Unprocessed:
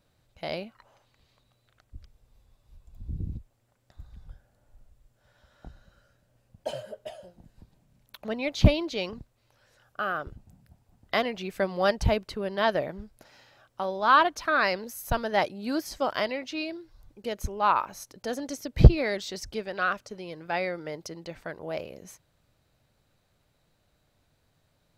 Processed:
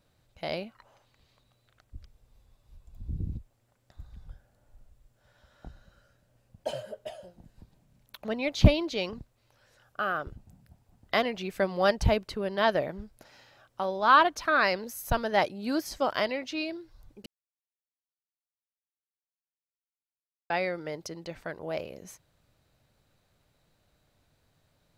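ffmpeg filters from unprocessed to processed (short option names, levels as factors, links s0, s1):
-filter_complex "[0:a]asplit=3[s0][s1][s2];[s0]atrim=end=17.26,asetpts=PTS-STARTPTS,afade=t=out:st=17.256:d=0.004:c=hsin[s3];[s1]atrim=start=17.26:end=20.5,asetpts=PTS-STARTPTS,volume=0[s4];[s2]atrim=start=20.5,asetpts=PTS-STARTPTS,afade=t=in:d=0.004:c=hsin[s5];[s3][s4][s5]concat=n=3:v=0:a=1"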